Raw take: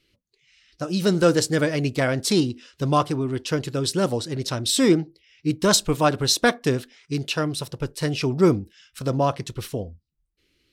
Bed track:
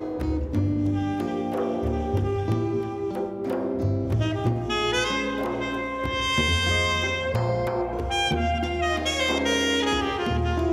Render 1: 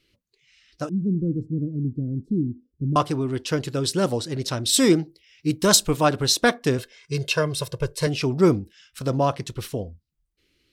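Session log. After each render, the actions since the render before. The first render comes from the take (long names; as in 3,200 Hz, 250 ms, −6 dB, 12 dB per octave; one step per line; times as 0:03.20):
0:00.89–0:02.96: inverse Chebyshev low-pass filter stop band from 760 Hz, stop band 50 dB
0:04.72–0:05.88: high-shelf EQ 5,200 Hz → 8,100 Hz +7.5 dB
0:06.78–0:08.07: comb filter 1.9 ms, depth 88%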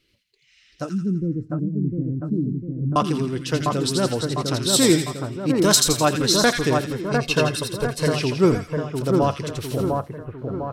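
echo with a time of its own for lows and highs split 1,600 Hz, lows 702 ms, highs 84 ms, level −3.5 dB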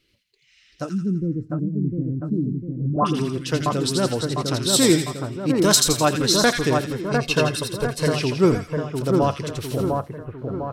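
0:02.76–0:03.38: all-pass dispersion highs, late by 105 ms, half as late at 1,100 Hz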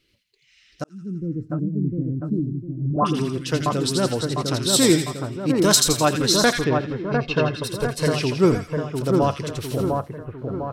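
0:00.84–0:01.46: fade in
0:02.39–0:02.91: phaser with its sweep stopped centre 320 Hz, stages 8
0:06.64–0:07.64: high-frequency loss of the air 230 metres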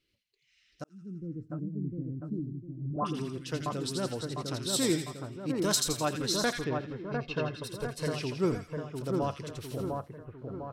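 level −11.5 dB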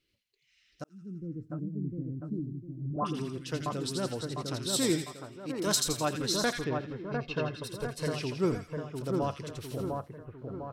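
0:05.04–0:05.67: low-shelf EQ 250 Hz −10 dB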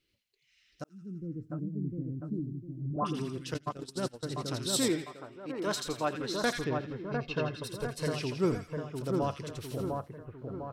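0:03.54–0:04.23: noise gate −33 dBFS, range −22 dB
0:04.88–0:06.44: bass and treble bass −7 dB, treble −13 dB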